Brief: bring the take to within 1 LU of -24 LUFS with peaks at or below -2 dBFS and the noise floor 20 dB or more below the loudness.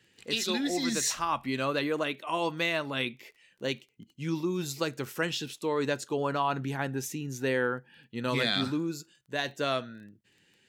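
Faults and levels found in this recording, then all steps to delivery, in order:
ticks 18/s; loudness -31.0 LUFS; peak -14.5 dBFS; loudness target -24.0 LUFS
-> de-click; gain +7 dB

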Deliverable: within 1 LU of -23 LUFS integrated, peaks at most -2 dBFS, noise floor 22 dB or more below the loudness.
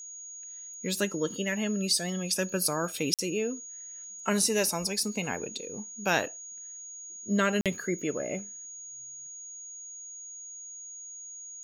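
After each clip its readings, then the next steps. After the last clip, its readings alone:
dropouts 2; longest dropout 47 ms; steady tone 6700 Hz; tone level -41 dBFS; loudness -31.5 LUFS; peak -11.5 dBFS; loudness target -23.0 LUFS
-> interpolate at 3.14/7.61, 47 ms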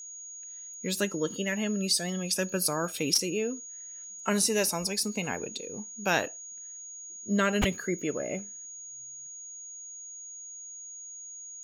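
dropouts 0; steady tone 6700 Hz; tone level -41 dBFS
-> notch 6700 Hz, Q 30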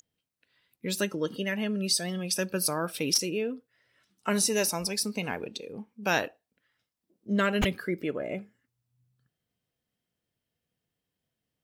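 steady tone none; loudness -29.0 LUFS; peak -10.5 dBFS; loudness target -23.0 LUFS
-> gain +6 dB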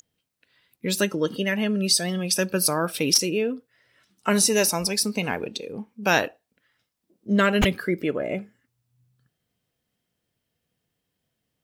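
loudness -23.5 LUFS; peak -4.5 dBFS; noise floor -80 dBFS

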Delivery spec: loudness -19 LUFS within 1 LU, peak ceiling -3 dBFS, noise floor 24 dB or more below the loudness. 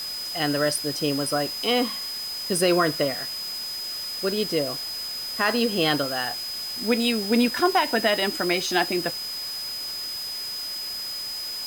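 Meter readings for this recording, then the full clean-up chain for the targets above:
steady tone 5000 Hz; tone level -30 dBFS; noise floor -32 dBFS; noise floor target -49 dBFS; loudness -24.5 LUFS; peak -9.0 dBFS; loudness target -19.0 LUFS
-> notch 5000 Hz, Q 30; noise print and reduce 17 dB; gain +5.5 dB

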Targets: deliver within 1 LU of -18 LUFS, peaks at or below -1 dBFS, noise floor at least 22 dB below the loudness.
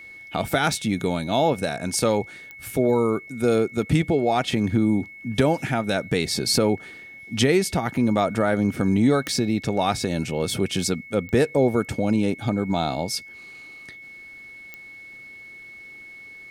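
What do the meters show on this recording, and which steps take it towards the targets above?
clicks 5; steady tone 2200 Hz; tone level -40 dBFS; loudness -23.0 LUFS; peak -7.0 dBFS; loudness target -18.0 LUFS
-> de-click; notch 2200 Hz, Q 30; gain +5 dB

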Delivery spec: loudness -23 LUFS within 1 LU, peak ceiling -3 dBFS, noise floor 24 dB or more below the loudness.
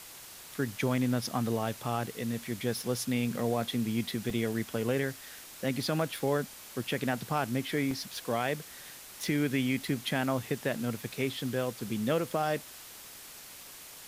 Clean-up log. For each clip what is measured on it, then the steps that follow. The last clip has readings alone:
dropouts 2; longest dropout 2.9 ms; noise floor -49 dBFS; noise floor target -56 dBFS; loudness -32.0 LUFS; peak -17.5 dBFS; loudness target -23.0 LUFS
-> interpolate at 4.3/7.91, 2.9 ms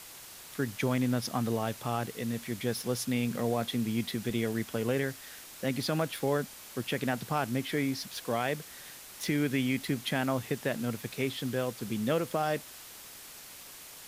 dropouts 0; noise floor -49 dBFS; noise floor target -56 dBFS
-> denoiser 7 dB, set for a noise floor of -49 dBFS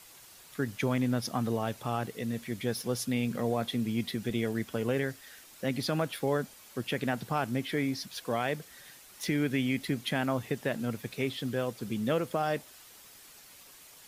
noise floor -54 dBFS; noise floor target -57 dBFS
-> denoiser 6 dB, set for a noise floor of -54 dBFS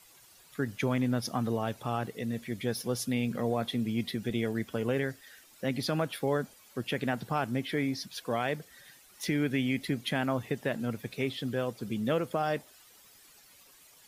noise floor -58 dBFS; loudness -32.5 LUFS; peak -17.5 dBFS; loudness target -23.0 LUFS
-> gain +9.5 dB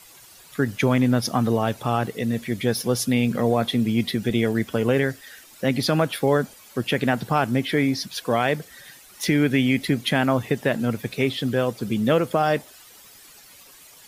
loudness -23.0 LUFS; peak -8.0 dBFS; noise floor -49 dBFS

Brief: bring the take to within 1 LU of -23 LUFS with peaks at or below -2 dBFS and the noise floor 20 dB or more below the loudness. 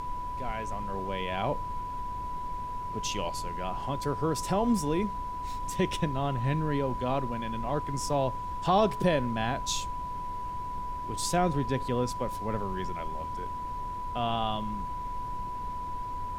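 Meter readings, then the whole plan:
steady tone 990 Hz; tone level -34 dBFS; noise floor -36 dBFS; noise floor target -52 dBFS; loudness -31.5 LUFS; peak -12.5 dBFS; loudness target -23.0 LUFS
-> notch 990 Hz, Q 30; noise print and reduce 16 dB; gain +8.5 dB

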